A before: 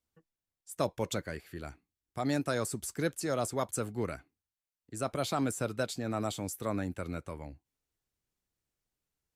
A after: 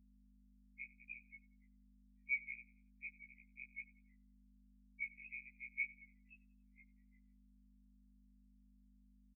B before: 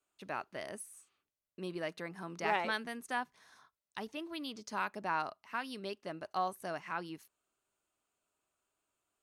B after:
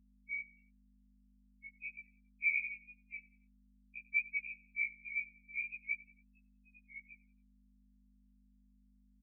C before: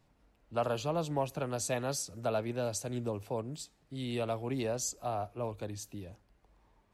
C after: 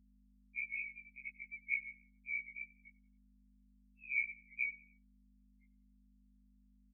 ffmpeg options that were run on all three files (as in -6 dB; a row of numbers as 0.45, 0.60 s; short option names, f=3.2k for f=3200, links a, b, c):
-af "afftfilt=real='re*gte(hypot(re,im),0.0126)':imag='im*gte(hypot(re,im),0.0126)':win_size=1024:overlap=0.75,aecho=1:1:3:0.39,asoftclip=type=hard:threshold=-22dB,asuperpass=centerf=2700:order=12:qfactor=7.8,afreqshift=-360,aecho=1:1:92|184|276:0.0841|0.0362|0.0156,aeval=exprs='val(0)+0.000112*(sin(2*PI*50*n/s)+sin(2*PI*2*50*n/s)/2+sin(2*PI*3*50*n/s)/3+sin(2*PI*4*50*n/s)/4+sin(2*PI*5*50*n/s)/5)':c=same,afftfilt=real='re*1.73*eq(mod(b,3),0)':imag='im*1.73*eq(mod(b,3),0)':win_size=2048:overlap=0.75,volume=17.5dB"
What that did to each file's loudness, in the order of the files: -11.5, +1.0, -4.5 LU